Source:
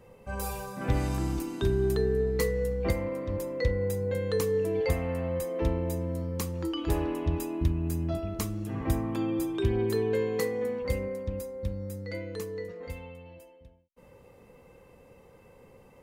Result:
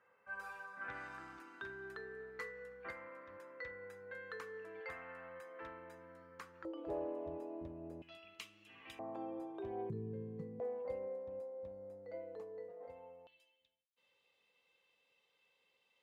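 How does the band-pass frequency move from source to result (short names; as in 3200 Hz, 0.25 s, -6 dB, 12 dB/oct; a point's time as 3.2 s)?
band-pass, Q 4.2
1500 Hz
from 6.65 s 580 Hz
from 8.02 s 2800 Hz
from 8.99 s 690 Hz
from 9.9 s 150 Hz
from 10.6 s 680 Hz
from 13.27 s 3500 Hz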